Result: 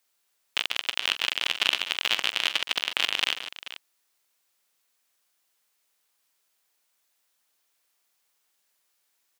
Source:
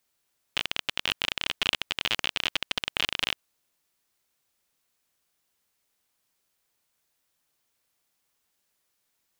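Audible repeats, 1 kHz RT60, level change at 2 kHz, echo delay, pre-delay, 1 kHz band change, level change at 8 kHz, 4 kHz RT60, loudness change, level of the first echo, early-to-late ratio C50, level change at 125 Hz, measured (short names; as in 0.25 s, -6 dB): 3, none, +3.0 dB, 46 ms, none, +2.0 dB, +3.0 dB, none, +3.0 dB, -14.5 dB, none, under -10 dB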